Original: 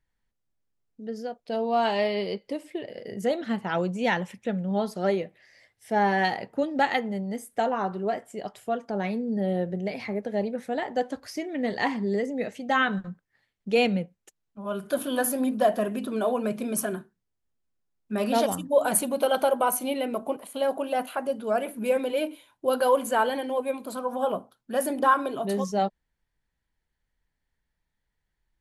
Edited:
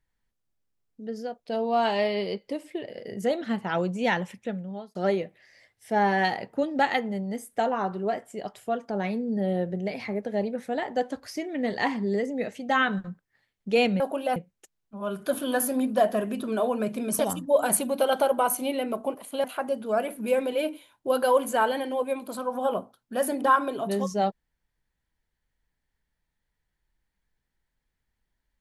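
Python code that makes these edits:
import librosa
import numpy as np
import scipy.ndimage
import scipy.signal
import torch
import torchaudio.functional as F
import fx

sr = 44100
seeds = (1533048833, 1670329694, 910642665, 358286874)

y = fx.edit(x, sr, fx.fade_out_span(start_s=4.31, length_s=0.64),
    fx.cut(start_s=16.83, length_s=1.58),
    fx.move(start_s=20.66, length_s=0.36, to_s=14.0), tone=tone)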